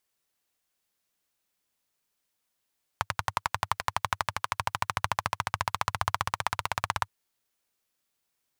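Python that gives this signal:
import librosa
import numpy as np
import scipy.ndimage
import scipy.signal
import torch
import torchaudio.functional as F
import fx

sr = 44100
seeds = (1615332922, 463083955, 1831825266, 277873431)

y = fx.engine_single_rev(sr, seeds[0], length_s=4.07, rpm=1300, resonances_hz=(100.0, 1000.0), end_rpm=2000)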